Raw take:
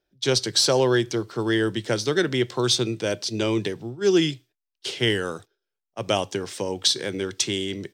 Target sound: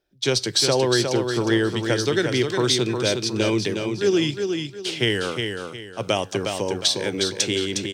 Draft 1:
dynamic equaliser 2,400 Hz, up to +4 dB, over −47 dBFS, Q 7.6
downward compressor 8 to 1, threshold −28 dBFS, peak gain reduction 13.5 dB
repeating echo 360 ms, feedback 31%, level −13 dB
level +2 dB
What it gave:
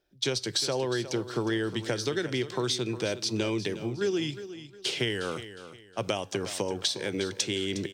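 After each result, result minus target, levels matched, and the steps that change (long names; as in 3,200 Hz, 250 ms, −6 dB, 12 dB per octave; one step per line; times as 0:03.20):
downward compressor: peak gain reduction +9 dB; echo-to-direct −7.5 dB
change: downward compressor 8 to 1, threshold −17.5 dBFS, peak gain reduction 4.5 dB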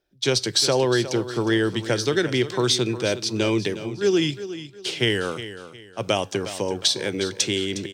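echo-to-direct −7.5 dB
change: repeating echo 360 ms, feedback 31%, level −5.5 dB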